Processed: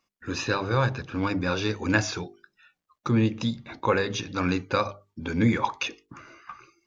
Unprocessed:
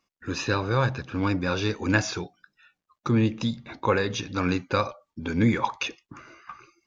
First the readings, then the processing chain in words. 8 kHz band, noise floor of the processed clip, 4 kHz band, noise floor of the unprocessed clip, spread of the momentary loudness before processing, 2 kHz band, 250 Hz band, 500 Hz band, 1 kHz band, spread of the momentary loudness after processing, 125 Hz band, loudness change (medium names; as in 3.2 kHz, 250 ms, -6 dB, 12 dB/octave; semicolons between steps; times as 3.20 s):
no reading, -82 dBFS, 0.0 dB, -84 dBFS, 13 LU, 0.0 dB, -0.5 dB, -0.5 dB, 0.0 dB, 13 LU, -1.0 dB, -0.5 dB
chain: hum notches 50/100/150/200/250/300/350/400/450 Hz